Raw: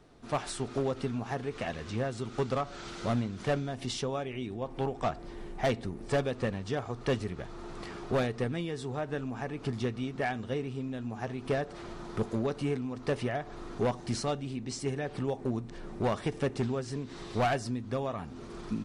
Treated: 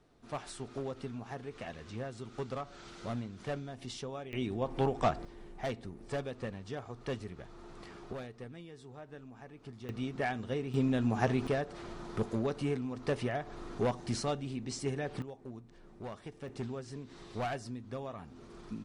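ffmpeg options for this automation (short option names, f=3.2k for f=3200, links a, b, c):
-af "asetnsamples=n=441:p=0,asendcmd='4.33 volume volume 2dB;5.25 volume volume -8dB;8.13 volume volume -14.5dB;9.89 volume volume -2dB;10.74 volume volume 7dB;11.47 volume volume -2dB;15.22 volume volume -14dB;16.48 volume volume -8dB',volume=-8dB"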